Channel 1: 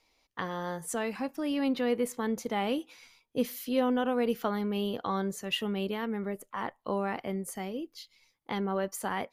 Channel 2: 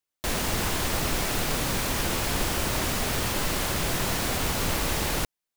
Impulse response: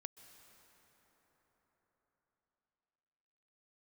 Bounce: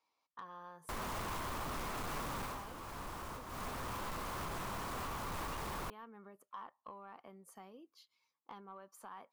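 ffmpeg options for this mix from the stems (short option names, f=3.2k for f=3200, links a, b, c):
-filter_complex "[0:a]highpass=130,bandreject=f=2k:w=10,acompressor=threshold=-36dB:ratio=20,volume=-16.5dB,asplit=2[a][b];[1:a]tiltshelf=f=970:g=3.5,acrusher=bits=5:mix=0:aa=0.000001,adelay=650,volume=2.5dB,afade=t=out:st=2.33:d=0.32:silence=0.223872,afade=t=in:st=3.47:d=0.32:silence=0.298538[c];[b]apad=whole_len=273881[d];[c][d]sidechaincompress=threshold=-57dB:ratio=8:attack=48:release=533[e];[a][e]amix=inputs=2:normalize=0,equalizer=f=1.1k:w=1.6:g=14,asoftclip=type=tanh:threshold=-37.5dB"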